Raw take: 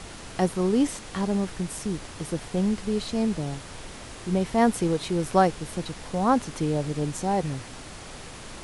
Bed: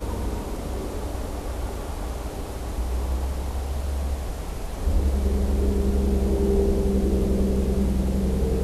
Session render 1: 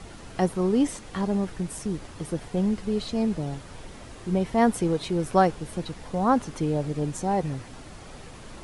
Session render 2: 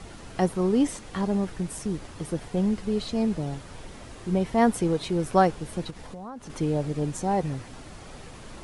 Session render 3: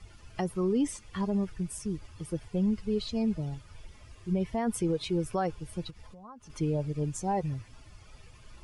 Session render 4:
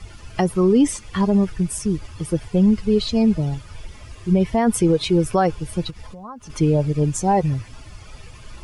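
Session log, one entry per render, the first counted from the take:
noise reduction 7 dB, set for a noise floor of -42 dBFS
5.90–6.50 s: compression 5:1, threshold -37 dBFS
expander on every frequency bin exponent 1.5; peak limiter -20.5 dBFS, peak gain reduction 12 dB
trim +12 dB

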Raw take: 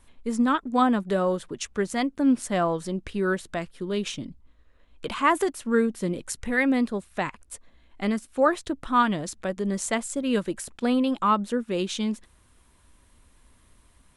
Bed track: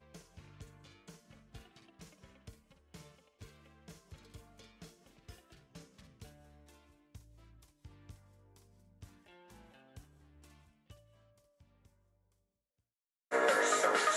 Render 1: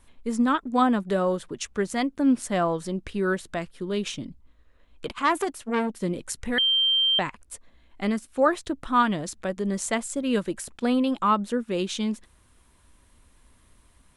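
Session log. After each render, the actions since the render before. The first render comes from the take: 5.06–6.02 s: transformer saturation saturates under 1.3 kHz; 6.58–7.19 s: bleep 3.15 kHz -18.5 dBFS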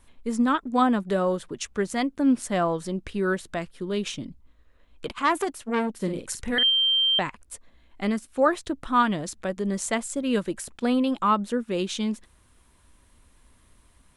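5.94–6.70 s: doubling 48 ms -8 dB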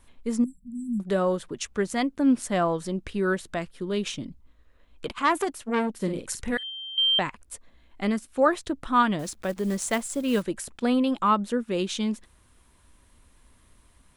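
0.44–1.00 s: brick-wall FIR band-stop 240–7400 Hz; 6.57–6.98 s: band-pass filter 7.4 kHz, Q 2.8; 9.19–10.44 s: block-companded coder 5-bit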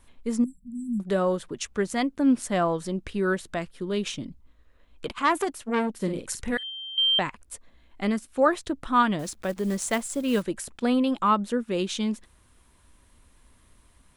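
no audible change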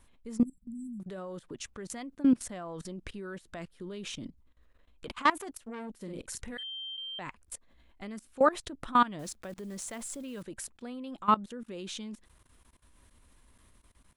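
level held to a coarse grid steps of 20 dB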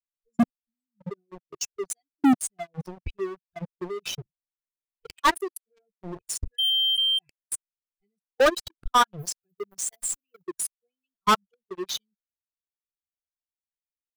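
expander on every frequency bin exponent 3; waveshaping leveller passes 5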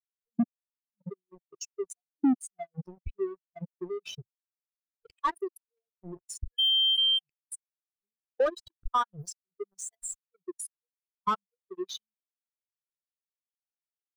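compression 6:1, threshold -24 dBFS, peak gain reduction 7.5 dB; spectral contrast expander 1.5:1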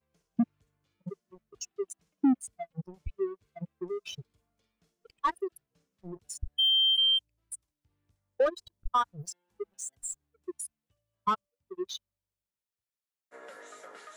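add bed track -19 dB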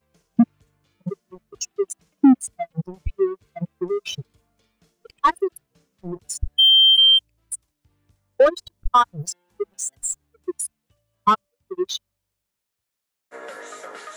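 trim +11 dB

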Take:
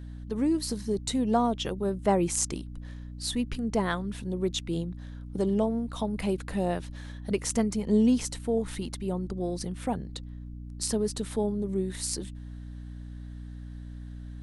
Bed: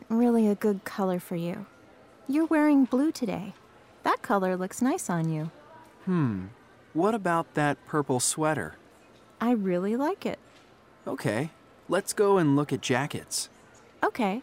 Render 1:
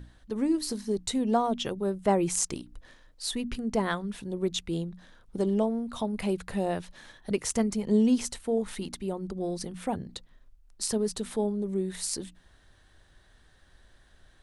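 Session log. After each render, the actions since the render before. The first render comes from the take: hum notches 60/120/180/240/300 Hz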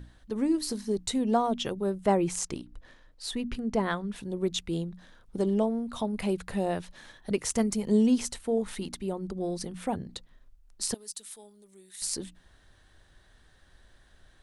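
2.17–4.16 s: treble shelf 5.3 kHz -7.5 dB; 7.58–8.07 s: treble shelf 7.5 kHz +9 dB; 10.94–12.02 s: pre-emphasis filter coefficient 0.97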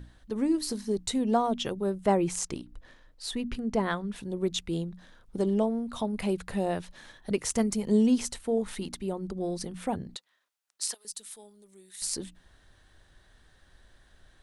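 10.16–11.05 s: Bessel high-pass 1.2 kHz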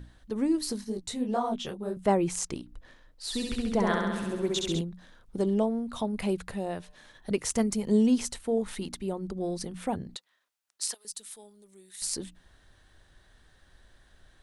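0.84–1.97 s: detune thickener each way 54 cents; 3.24–4.81 s: flutter echo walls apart 11.5 m, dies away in 1.3 s; 6.51–7.15 s: feedback comb 150 Hz, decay 1.9 s, mix 40%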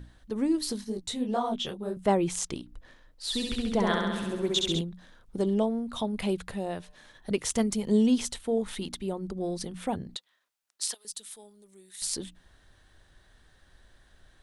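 dynamic bell 3.4 kHz, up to +7 dB, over -56 dBFS, Q 3.1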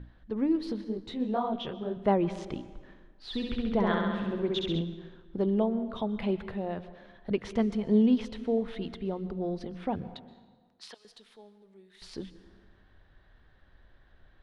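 distance through air 320 m; plate-style reverb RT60 1.5 s, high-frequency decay 0.7×, pre-delay 110 ms, DRR 14.5 dB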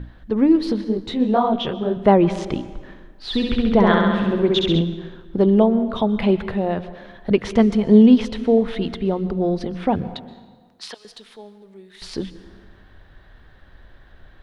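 trim +12 dB; peak limiter -2 dBFS, peak gain reduction 1.5 dB

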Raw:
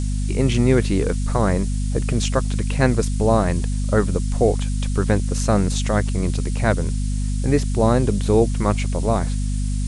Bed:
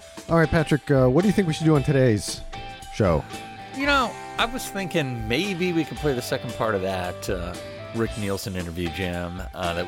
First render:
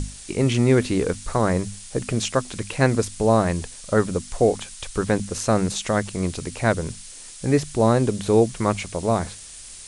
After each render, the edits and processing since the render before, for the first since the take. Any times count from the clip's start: hum notches 50/100/150/200/250 Hz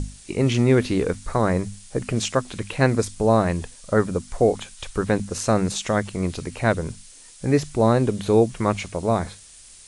noise print and reduce 6 dB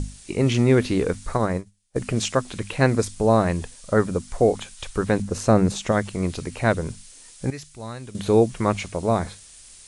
1.37–1.96 s: upward expansion 2.5:1, over -36 dBFS; 5.22–5.92 s: tilt shelf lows +4 dB, about 1.2 kHz; 7.50–8.15 s: amplifier tone stack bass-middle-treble 5-5-5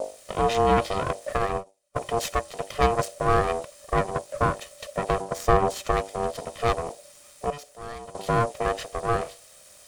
comb filter that takes the minimum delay 1.6 ms; ring modulator 580 Hz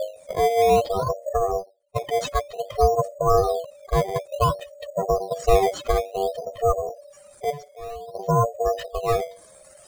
spectral contrast enhancement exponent 2.9; in parallel at -5 dB: decimation with a swept rate 11×, swing 100% 0.56 Hz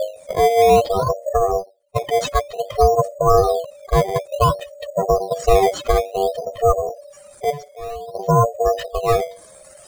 trim +5 dB; peak limiter -3 dBFS, peak gain reduction 3 dB

